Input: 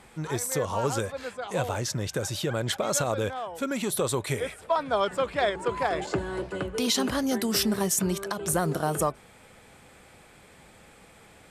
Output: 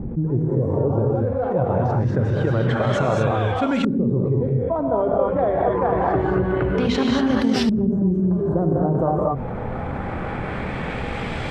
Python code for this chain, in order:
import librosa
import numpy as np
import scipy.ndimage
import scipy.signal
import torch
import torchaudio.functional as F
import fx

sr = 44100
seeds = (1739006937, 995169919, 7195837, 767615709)

y = fx.low_shelf(x, sr, hz=330.0, db=8.5)
y = fx.hum_notches(y, sr, base_hz=50, count=5)
y = fx.rev_gated(y, sr, seeds[0], gate_ms=260, shape='rising', drr_db=-1.0)
y = fx.transient(y, sr, attack_db=4, sustain_db=-3)
y = fx.filter_lfo_lowpass(y, sr, shape='saw_up', hz=0.26, low_hz=250.0, high_hz=3800.0, q=1.0)
y = fx.env_flatten(y, sr, amount_pct=70)
y = y * 10.0 ** (-5.0 / 20.0)